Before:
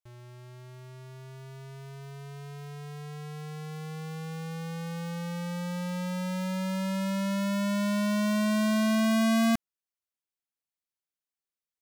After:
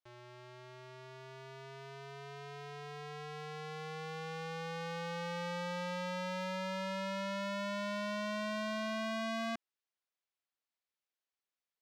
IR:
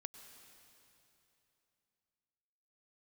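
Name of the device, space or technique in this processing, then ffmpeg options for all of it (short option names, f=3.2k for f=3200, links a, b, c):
DJ mixer with the lows and highs turned down: -filter_complex "[0:a]acrossover=split=330 5700:gain=0.2 1 0.126[a][b][c];[a][b][c]amix=inputs=3:normalize=0,alimiter=level_in=8dB:limit=-24dB:level=0:latency=1,volume=-8dB,volume=1.5dB"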